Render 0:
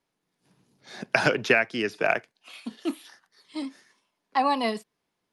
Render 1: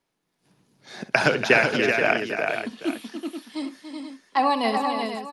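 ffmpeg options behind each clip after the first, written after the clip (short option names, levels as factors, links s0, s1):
-af "aecho=1:1:65|286|378|480|801:0.237|0.335|0.531|0.335|0.158,volume=1.26"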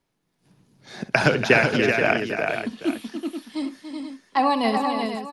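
-af "lowshelf=f=170:g=11"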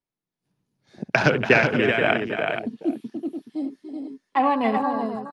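-af "afwtdn=0.0316"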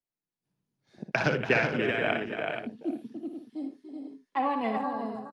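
-af "aecho=1:1:59|79:0.355|0.133,volume=0.398"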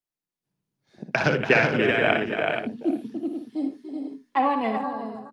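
-af "bandreject=f=59.61:t=h:w=4,bandreject=f=119.22:t=h:w=4,bandreject=f=178.83:t=h:w=4,bandreject=f=238.44:t=h:w=4,bandreject=f=298.05:t=h:w=4,dynaudnorm=f=220:g=11:m=2.82"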